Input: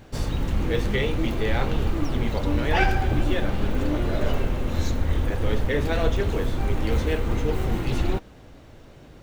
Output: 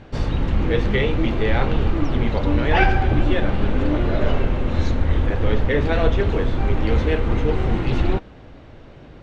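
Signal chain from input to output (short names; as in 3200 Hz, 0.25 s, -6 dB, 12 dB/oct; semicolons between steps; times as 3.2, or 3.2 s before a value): LPF 3600 Hz 12 dB/oct; gain +4.5 dB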